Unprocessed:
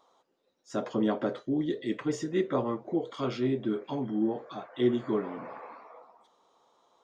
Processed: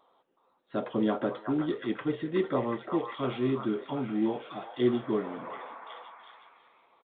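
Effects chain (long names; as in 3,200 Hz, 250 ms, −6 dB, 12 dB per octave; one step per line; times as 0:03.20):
noise that follows the level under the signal 24 dB
downsampling to 8,000 Hz
echo through a band-pass that steps 368 ms, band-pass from 1,100 Hz, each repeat 0.7 octaves, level −2 dB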